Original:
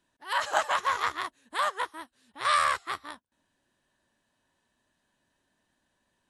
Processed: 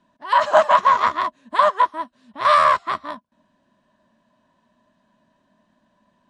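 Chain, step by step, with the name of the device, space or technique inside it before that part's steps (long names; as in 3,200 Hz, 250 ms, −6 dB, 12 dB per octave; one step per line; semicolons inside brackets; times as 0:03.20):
inside a cardboard box (low-pass filter 5,500 Hz 12 dB per octave; hollow resonant body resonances 210/620/1,000 Hz, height 15 dB, ringing for 35 ms)
level +4 dB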